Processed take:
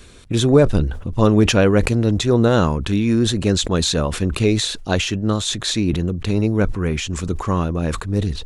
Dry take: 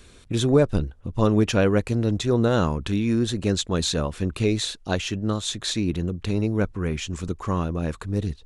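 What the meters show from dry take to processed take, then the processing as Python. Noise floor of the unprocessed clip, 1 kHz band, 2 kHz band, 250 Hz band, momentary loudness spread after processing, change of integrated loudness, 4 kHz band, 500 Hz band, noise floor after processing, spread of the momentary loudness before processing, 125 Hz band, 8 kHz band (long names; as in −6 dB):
−49 dBFS, +5.5 dB, +6.5 dB, +5.5 dB, 8 LU, +5.5 dB, +6.5 dB, +5.0 dB, −33 dBFS, 8 LU, +5.5 dB, +6.5 dB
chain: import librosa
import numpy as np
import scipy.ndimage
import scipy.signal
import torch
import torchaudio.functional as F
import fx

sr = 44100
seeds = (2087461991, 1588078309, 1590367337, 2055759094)

y = fx.sustainer(x, sr, db_per_s=74.0)
y = y * librosa.db_to_amplitude(5.0)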